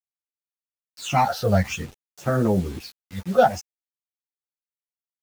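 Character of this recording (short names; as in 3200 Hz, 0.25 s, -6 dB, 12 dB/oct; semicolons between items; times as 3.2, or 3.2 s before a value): phasing stages 8, 0.53 Hz, lowest notch 290–4500 Hz; random-step tremolo, depth 55%; a quantiser's noise floor 8-bit, dither none; a shimmering, thickened sound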